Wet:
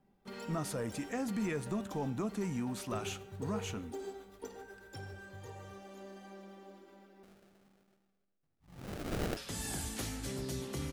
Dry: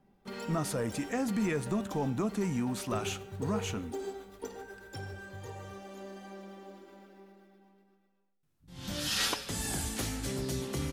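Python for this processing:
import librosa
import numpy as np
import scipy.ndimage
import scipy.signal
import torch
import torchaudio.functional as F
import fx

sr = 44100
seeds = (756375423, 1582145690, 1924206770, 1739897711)

y = fx.sample_hold(x, sr, seeds[0], rate_hz=1000.0, jitter_pct=20, at=(7.23, 9.37))
y = F.gain(torch.from_numpy(y), -4.5).numpy()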